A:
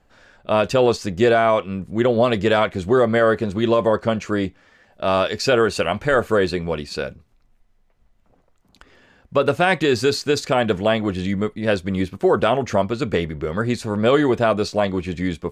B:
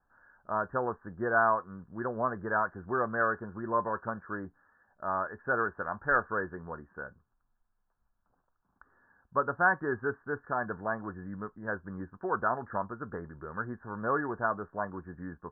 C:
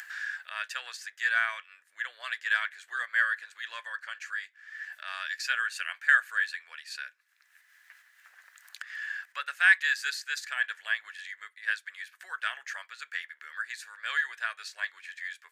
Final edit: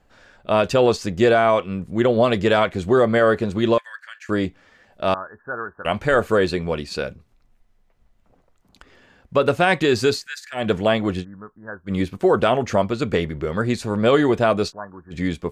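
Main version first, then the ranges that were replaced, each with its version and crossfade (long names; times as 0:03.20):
A
0:03.78–0:04.29: punch in from C
0:05.14–0:05.85: punch in from B
0:10.19–0:10.60: punch in from C, crossfade 0.16 s
0:11.22–0:11.89: punch in from B, crossfade 0.06 s
0:14.70–0:15.13: punch in from B, crossfade 0.06 s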